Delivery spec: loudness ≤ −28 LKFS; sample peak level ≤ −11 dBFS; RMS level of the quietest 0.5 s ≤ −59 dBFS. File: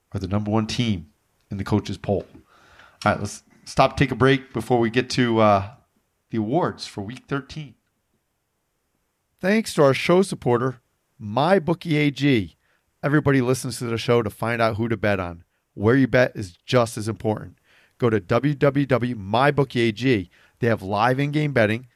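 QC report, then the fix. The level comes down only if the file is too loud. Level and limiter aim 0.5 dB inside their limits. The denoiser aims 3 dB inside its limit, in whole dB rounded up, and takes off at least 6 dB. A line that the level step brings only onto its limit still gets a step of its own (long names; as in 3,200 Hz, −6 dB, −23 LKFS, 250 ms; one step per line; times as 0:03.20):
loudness −22.0 LKFS: out of spec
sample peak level −4.5 dBFS: out of spec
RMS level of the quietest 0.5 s −73 dBFS: in spec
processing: level −6.5 dB
brickwall limiter −11.5 dBFS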